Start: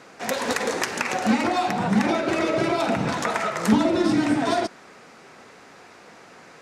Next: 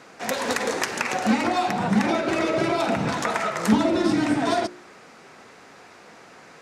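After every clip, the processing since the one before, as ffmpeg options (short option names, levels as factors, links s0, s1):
-af "bandreject=f=59.52:t=h:w=4,bandreject=f=119.04:t=h:w=4,bandreject=f=178.56:t=h:w=4,bandreject=f=238.08:t=h:w=4,bandreject=f=297.6:t=h:w=4,bandreject=f=357.12:t=h:w=4,bandreject=f=416.64:t=h:w=4,bandreject=f=476.16:t=h:w=4,bandreject=f=535.68:t=h:w=4,bandreject=f=595.2:t=h:w=4"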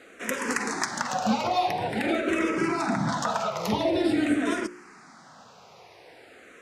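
-filter_complex "[0:a]asplit=2[s0][s1];[s1]afreqshift=-0.47[s2];[s0][s2]amix=inputs=2:normalize=1"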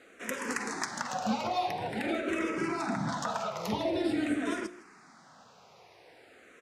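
-af "aecho=1:1:158:0.106,volume=0.501"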